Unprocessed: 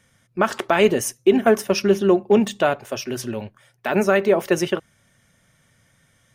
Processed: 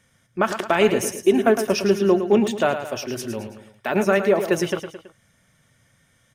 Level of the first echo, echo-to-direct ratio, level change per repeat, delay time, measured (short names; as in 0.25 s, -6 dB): -9.5 dB, -8.5 dB, -6.5 dB, 0.109 s